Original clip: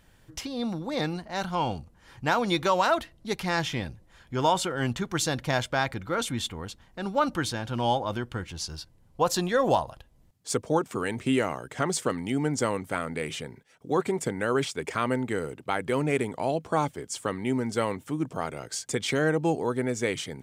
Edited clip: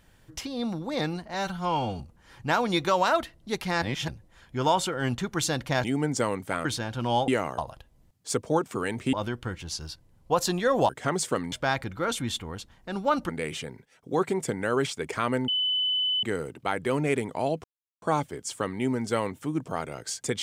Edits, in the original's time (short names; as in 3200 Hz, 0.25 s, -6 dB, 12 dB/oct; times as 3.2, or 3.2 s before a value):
1.34–1.78 stretch 1.5×
3.6–3.86 reverse
5.62–7.39 swap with 12.26–13.07
8.02–9.78 swap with 11.33–11.63
15.26 add tone 3010 Hz -23 dBFS 0.75 s
16.67 insert silence 0.38 s